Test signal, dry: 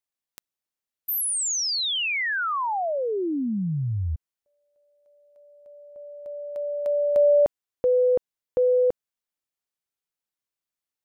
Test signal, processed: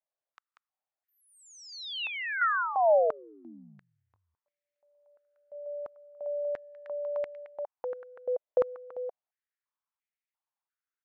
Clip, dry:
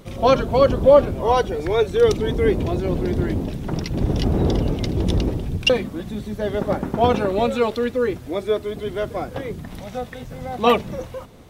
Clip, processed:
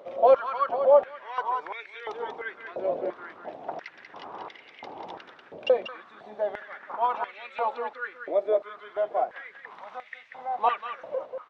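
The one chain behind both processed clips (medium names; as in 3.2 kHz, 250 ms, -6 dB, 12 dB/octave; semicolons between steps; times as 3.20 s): in parallel at +2 dB: compression, threshold -30 dBFS; on the sum: tape spacing loss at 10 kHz 36 dB; delay 189 ms -6.5 dB; step-sequenced high-pass 2.9 Hz 600–2100 Hz; trim -8.5 dB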